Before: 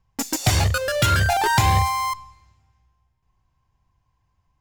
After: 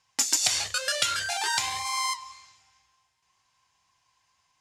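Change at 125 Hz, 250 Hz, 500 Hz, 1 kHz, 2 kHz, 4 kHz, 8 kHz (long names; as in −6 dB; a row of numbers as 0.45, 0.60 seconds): −31.5, −20.0, −13.5, −10.5, −6.0, 0.0, +2.5 decibels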